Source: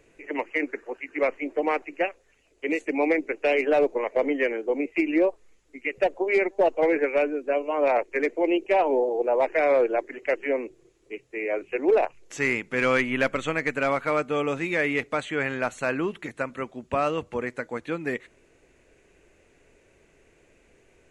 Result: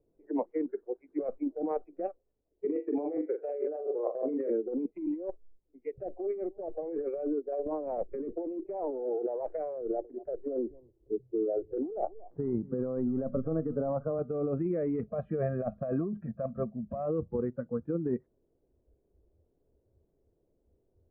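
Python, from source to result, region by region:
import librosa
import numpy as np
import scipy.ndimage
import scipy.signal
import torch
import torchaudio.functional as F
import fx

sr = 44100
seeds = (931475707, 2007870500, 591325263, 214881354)

y = fx.chain(x, sr, fx.highpass(hz=290.0, slope=12),
    fx.room_flutter(wall_m=7.2, rt60_s=0.33), at=(2.65, 4.5))
y = fx.chain(y, sr, fx.bass_treble(bass_db=8, treble_db=-1),
    fx.band_squash(depth_pct=70), at=(7.66, 8.32))
y = fx.chain(y, sr, fx.lowpass(hz=1100.0, slope=12),
    fx.echo_single(ms=231, db=-19.5),
    fx.band_squash(depth_pct=40), at=(9.81, 14.19))
y = fx.chain(y, sr, fx.peak_eq(hz=210.0, db=12.0, octaves=0.27),
    fx.comb(ms=1.7, depth=0.41),
    fx.small_body(hz=(670.0, 1600.0, 2500.0, 3900.0), ring_ms=60, db=8), at=(15.02, 17.06))
y = fx.noise_reduce_blind(y, sr, reduce_db=16)
y = scipy.signal.sosfilt(scipy.signal.bessel(4, 520.0, 'lowpass', norm='mag', fs=sr, output='sos'), y)
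y = fx.over_compress(y, sr, threshold_db=-32.0, ratio=-1.0)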